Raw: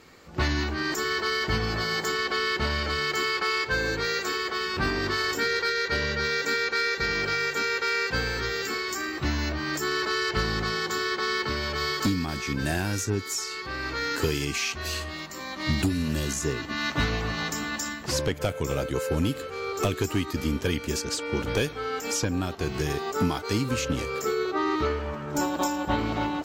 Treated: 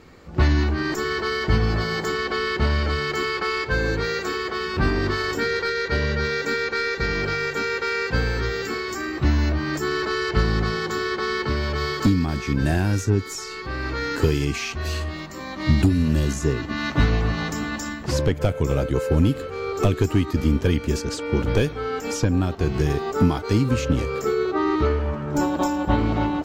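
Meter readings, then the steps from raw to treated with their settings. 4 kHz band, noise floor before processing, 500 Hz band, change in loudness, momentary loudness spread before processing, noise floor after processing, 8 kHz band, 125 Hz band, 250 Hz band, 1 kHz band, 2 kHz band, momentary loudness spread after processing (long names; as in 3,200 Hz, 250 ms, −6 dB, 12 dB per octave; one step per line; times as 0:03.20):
−1.5 dB, −37 dBFS, +5.0 dB, +4.0 dB, 4 LU, −34 dBFS, −3.0 dB, +9.0 dB, +6.5 dB, +2.0 dB, +1.0 dB, 6 LU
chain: spectral tilt −2 dB per octave
level +2.5 dB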